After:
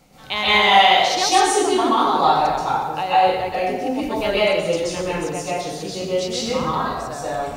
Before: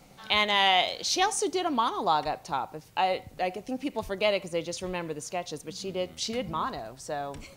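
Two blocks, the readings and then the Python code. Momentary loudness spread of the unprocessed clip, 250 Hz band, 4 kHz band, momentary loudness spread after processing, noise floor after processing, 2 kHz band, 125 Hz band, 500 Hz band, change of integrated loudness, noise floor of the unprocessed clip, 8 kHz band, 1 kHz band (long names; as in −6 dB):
12 LU, +9.5 dB, +8.0 dB, 12 LU, −31 dBFS, +9.5 dB, +9.5 dB, +10.0 dB, +10.0 dB, −54 dBFS, +8.0 dB, +11.0 dB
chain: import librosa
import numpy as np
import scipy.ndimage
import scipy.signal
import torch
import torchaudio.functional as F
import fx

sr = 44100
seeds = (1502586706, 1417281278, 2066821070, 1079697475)

y = fx.rev_plate(x, sr, seeds[0], rt60_s=1.2, hf_ratio=0.7, predelay_ms=115, drr_db=-9.0)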